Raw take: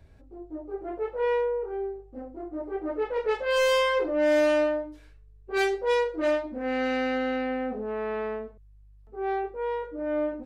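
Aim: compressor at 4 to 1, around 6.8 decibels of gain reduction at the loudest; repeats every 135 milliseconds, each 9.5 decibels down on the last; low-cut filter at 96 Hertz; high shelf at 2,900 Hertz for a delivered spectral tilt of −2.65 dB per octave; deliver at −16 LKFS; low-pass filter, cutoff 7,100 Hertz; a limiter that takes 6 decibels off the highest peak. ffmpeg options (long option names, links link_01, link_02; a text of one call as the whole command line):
ffmpeg -i in.wav -af "highpass=96,lowpass=7100,highshelf=frequency=2900:gain=-7.5,acompressor=threshold=-28dB:ratio=4,alimiter=level_in=3.5dB:limit=-24dB:level=0:latency=1,volume=-3.5dB,aecho=1:1:135|270|405|540:0.335|0.111|0.0365|0.012,volume=19dB" out.wav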